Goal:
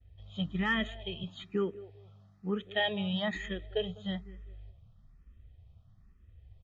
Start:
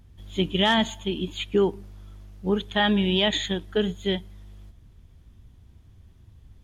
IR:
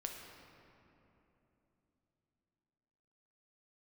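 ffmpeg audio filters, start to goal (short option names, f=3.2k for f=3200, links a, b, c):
-filter_complex "[0:a]asettb=1/sr,asplit=3[a][b][c];[a]atrim=end=1.234[d];[b]atrim=start=1.23:end=3.35,asetpts=PTS-STARTPTS,afade=t=in:d=0.004:c=qsin,afade=t=out:st=2.116:d=0.004:c=qsin,highpass=f=95:w=0.5412,highpass=f=95:w=1.3066[e];[c]atrim=start=3.346[f];[d][e]acrossfade=d=0.004:c1=hsin:c2=qsin[g];[g][f]acrossfade=d=0.004:c1=qsin:c2=hsin,agate=range=-33dB:threshold=-50dB:ratio=3:detection=peak,lowpass=3.5k,aecho=1:1:1.6:0.55,asplit=2[h][i];[i]adelay=201,lowpass=f=1.1k:p=1,volume=-17.5dB,asplit=2[j][k];[k]adelay=201,lowpass=f=1.1k:p=1,volume=0.3,asplit=2[l][m];[m]adelay=201,lowpass=f=1.1k:p=1,volume=0.3[n];[h][j][l][n]amix=inputs=4:normalize=0,asplit=2[o][p];[p]afreqshift=1.1[q];[o][q]amix=inputs=2:normalize=1,volume=-6dB"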